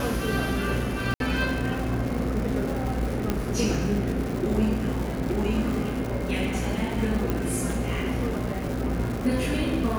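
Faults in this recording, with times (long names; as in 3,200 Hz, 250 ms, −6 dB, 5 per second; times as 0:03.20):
mains buzz 60 Hz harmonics 13 −31 dBFS
surface crackle 310 per second −31 dBFS
0:01.14–0:01.20: drop-out 62 ms
0:03.30: click −11 dBFS
0:07.30: click −13 dBFS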